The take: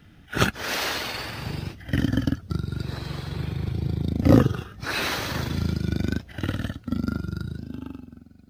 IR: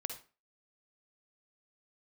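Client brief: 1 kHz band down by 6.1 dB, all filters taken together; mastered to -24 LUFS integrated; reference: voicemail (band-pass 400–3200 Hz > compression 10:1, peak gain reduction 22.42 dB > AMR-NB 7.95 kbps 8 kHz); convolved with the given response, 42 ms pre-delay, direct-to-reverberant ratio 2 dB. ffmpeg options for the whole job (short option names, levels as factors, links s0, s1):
-filter_complex "[0:a]equalizer=f=1000:t=o:g=-8.5,asplit=2[s0][s1];[1:a]atrim=start_sample=2205,adelay=42[s2];[s1][s2]afir=irnorm=-1:irlink=0,volume=0.841[s3];[s0][s3]amix=inputs=2:normalize=0,highpass=400,lowpass=3200,acompressor=threshold=0.0112:ratio=10,volume=11.9" -ar 8000 -c:a libopencore_amrnb -b:a 7950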